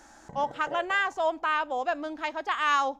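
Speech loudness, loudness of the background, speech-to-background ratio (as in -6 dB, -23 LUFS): -28.5 LUFS, -44.0 LUFS, 15.5 dB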